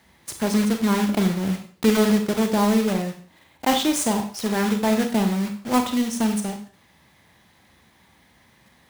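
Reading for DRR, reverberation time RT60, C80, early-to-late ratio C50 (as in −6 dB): 5.5 dB, 0.45 s, 13.0 dB, 8.5 dB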